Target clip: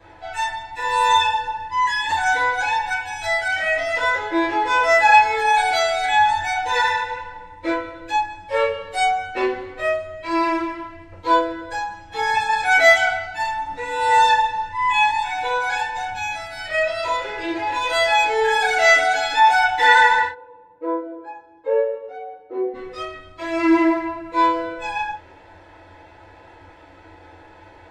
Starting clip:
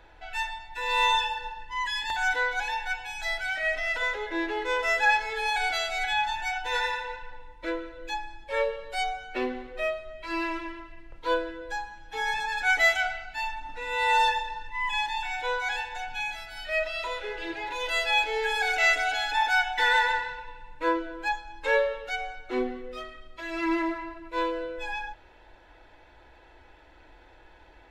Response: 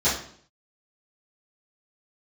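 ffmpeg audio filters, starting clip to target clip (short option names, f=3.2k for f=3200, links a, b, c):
-filter_complex "[0:a]asplit=3[a][b][c];[a]afade=t=out:st=20.26:d=0.02[d];[b]bandpass=f=450:t=q:w=2.8:csg=0,afade=t=in:st=20.26:d=0.02,afade=t=out:st=22.73:d=0.02[e];[c]afade=t=in:st=22.73:d=0.02[f];[d][e][f]amix=inputs=3:normalize=0[g];[1:a]atrim=start_sample=2205,atrim=end_sample=4410,asetrate=57330,aresample=44100[h];[g][h]afir=irnorm=-1:irlink=0,volume=-4dB"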